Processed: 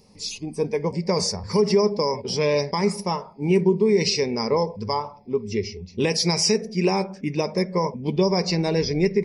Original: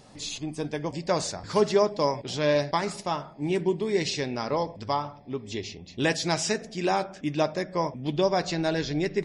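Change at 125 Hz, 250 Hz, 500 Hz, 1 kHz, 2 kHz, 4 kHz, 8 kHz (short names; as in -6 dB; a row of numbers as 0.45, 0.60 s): +6.5, +6.0, +4.5, +0.5, +0.5, +6.5, +5.5 dB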